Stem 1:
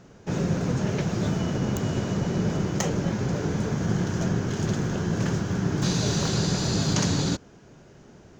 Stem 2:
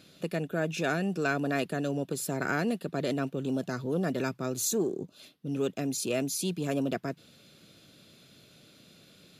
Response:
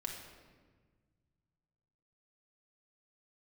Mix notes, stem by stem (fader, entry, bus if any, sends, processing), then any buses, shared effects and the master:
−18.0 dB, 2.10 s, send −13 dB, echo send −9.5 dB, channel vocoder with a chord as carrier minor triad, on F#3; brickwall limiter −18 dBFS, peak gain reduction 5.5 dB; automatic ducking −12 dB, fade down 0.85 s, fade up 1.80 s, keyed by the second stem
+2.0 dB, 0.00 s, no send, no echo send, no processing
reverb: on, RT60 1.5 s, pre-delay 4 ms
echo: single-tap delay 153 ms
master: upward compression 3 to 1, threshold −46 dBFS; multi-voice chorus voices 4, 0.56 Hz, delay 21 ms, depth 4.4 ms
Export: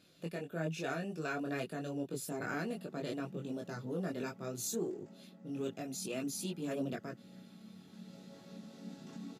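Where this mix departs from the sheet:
stem 2 +2.0 dB → −5.5 dB
master: missing upward compression 3 to 1, threshold −46 dBFS

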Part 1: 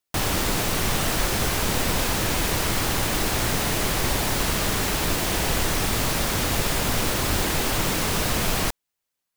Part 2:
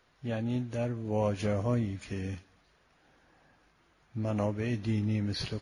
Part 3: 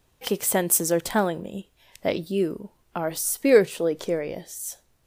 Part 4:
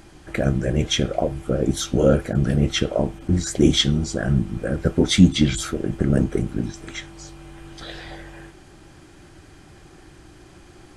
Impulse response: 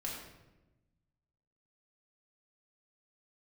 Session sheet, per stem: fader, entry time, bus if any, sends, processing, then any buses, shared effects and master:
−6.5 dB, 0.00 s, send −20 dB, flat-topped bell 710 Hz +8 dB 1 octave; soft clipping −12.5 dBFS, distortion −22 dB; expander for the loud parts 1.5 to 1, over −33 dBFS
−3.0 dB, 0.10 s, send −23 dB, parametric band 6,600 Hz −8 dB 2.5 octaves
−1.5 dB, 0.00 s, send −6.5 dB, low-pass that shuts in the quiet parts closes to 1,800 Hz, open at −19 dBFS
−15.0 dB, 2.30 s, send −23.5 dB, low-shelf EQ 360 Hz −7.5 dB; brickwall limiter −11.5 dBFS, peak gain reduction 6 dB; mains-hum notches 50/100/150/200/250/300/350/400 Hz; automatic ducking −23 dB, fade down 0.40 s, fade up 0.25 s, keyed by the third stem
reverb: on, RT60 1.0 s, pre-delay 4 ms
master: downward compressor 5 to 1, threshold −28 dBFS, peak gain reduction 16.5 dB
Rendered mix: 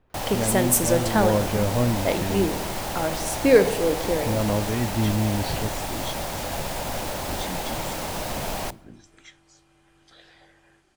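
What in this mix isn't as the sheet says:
stem 2 −3.0 dB → +6.0 dB
master: missing downward compressor 5 to 1, threshold −28 dBFS, peak gain reduction 16.5 dB

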